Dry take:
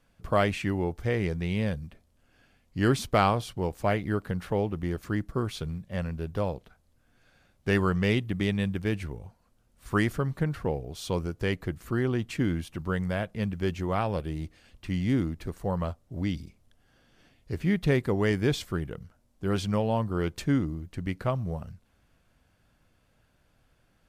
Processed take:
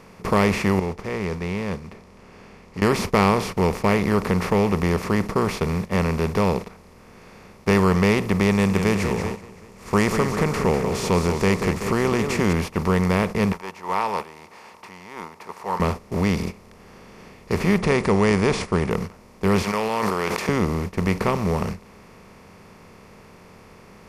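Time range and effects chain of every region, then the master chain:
0:00.79–0:02.82: one scale factor per block 7 bits + high-frequency loss of the air 81 metres + downward compressor 8 to 1, threshold −40 dBFS
0:08.51–0:12.53: parametric band 7,300 Hz +12.5 dB 0.62 octaves + feedback echo with a swinging delay time 190 ms, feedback 41%, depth 184 cents, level −15 dB
0:13.52–0:15.80: downward compressor 2 to 1, threshold −43 dBFS + high-pass with resonance 910 Hz, resonance Q 11
0:17.78–0:18.91: linear-phase brick-wall low-pass 11,000 Hz + one half of a high-frequency compander decoder only
0:19.62–0:20.49: high-pass filter 900 Hz + level that may fall only so fast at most 34 dB per second
whole clip: compressor on every frequency bin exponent 0.4; noise gate −27 dBFS, range −12 dB; EQ curve with evenly spaced ripples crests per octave 0.85, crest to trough 8 dB

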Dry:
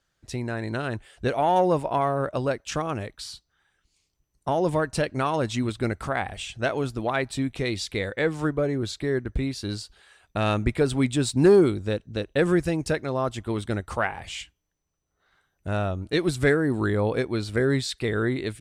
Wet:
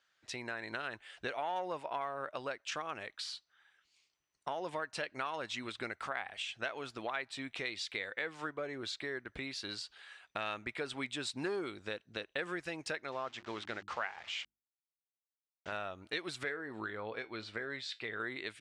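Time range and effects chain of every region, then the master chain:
0:13.12–0:15.72: hold until the input has moved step −41.5 dBFS + low-pass filter 7,200 Hz 24 dB per octave + mains-hum notches 50/100/150/200/250/300/350 Hz
0:16.43–0:18.20: high-frequency loss of the air 77 metres + tuned comb filter 110 Hz, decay 0.19 s
whole clip: low-pass filter 2,300 Hz 12 dB per octave; first difference; downward compressor 2.5 to 1, threshold −55 dBFS; level +15.5 dB

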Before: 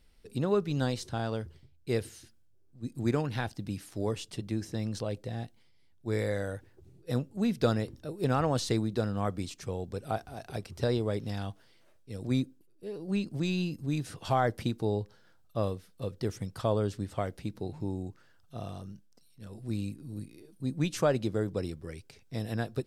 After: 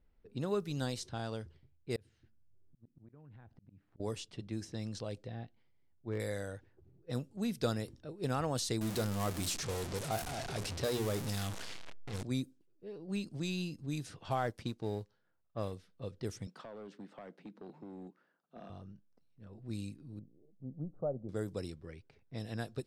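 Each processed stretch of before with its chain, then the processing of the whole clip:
0:01.96–0:04.00: bass and treble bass +7 dB, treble −11 dB + volume swells 608 ms + downward compressor 10 to 1, threshold −45 dBFS
0:05.24–0:06.20: treble cut that deepens with the level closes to 1,900 Hz, closed at −30.5 dBFS + hard clipping −20 dBFS
0:08.81–0:12.23: converter with a step at zero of −29.5 dBFS + mains-hum notches 60/120/180/240/300/360/420 Hz
0:14.35–0:15.73: mu-law and A-law mismatch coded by A + high-shelf EQ 8,500 Hz −10.5 dB
0:16.47–0:18.70: Butterworth high-pass 170 Hz 48 dB per octave + downward compressor 10 to 1, threshold −34 dBFS + gain into a clipping stage and back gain 36 dB
0:20.19–0:21.29: Gaussian smoothing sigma 12 samples + parametric band 60 Hz −12 dB 2.2 octaves + comb filter 1.5 ms, depth 49%
whole clip: low-pass that shuts in the quiet parts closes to 1,300 Hz, open at −26 dBFS; high-shelf EQ 5,300 Hz +11.5 dB; level −7 dB

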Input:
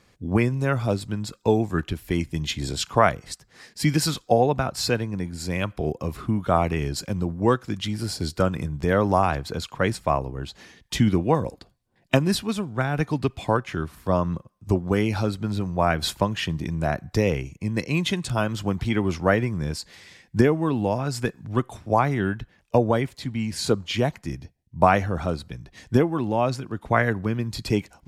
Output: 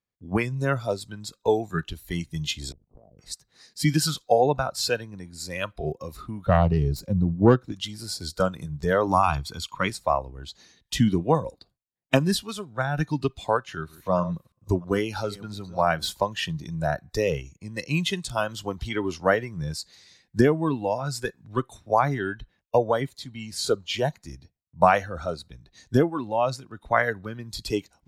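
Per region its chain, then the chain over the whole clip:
0:02.72–0:03.19: Butterworth low-pass 650 Hz + downward compressor 12 to 1, threshold −34 dBFS + amplitude modulation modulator 51 Hz, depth 85%
0:06.46–0:07.72: phase distortion by the signal itself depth 0.23 ms + tilt shelving filter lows +6.5 dB, about 810 Hz
0:09.07–0:09.90: parametric band 2,700 Hz +5.5 dB 0.21 octaves + comb filter 0.9 ms, depth 49%
0:13.55–0:16.11: delay that plays each chunk backwards 324 ms, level −14 dB + de-essing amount 55%
whole clip: noise gate with hold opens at −48 dBFS; noise reduction from a noise print of the clip's start 11 dB

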